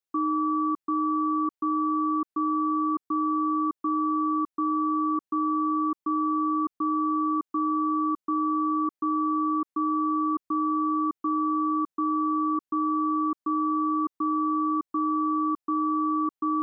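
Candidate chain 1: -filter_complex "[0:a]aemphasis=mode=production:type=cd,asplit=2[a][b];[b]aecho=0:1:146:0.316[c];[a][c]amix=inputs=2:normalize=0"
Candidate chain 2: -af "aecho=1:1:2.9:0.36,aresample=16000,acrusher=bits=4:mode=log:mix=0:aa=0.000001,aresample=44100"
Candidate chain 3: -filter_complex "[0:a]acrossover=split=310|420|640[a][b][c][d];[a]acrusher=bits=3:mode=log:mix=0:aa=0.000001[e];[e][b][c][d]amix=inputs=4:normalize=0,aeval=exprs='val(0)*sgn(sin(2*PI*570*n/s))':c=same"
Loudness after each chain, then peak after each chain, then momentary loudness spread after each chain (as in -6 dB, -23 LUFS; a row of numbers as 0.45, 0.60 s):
-25.0, -25.5, -25.5 LUFS; -17.5, -16.5, -19.0 dBFS; 3, 2, 2 LU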